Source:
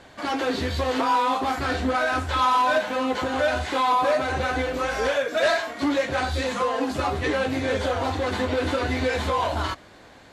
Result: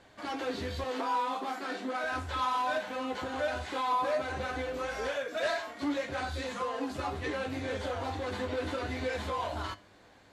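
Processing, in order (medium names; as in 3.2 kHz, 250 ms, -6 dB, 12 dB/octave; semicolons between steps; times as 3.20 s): 0.84–2.04 s: elliptic high-pass 190 Hz; flange 0.22 Hz, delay 9.6 ms, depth 1.2 ms, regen +79%; trim -5.5 dB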